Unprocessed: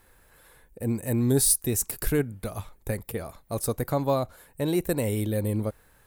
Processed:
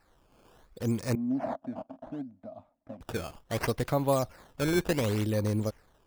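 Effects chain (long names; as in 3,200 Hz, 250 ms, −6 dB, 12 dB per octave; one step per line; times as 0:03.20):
sample-and-hold swept by an LFO 13×, swing 160% 0.69 Hz
0:01.15–0:03.01: pair of resonant band-passes 410 Hz, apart 1.3 octaves
automatic gain control gain up to 5 dB
level −6.5 dB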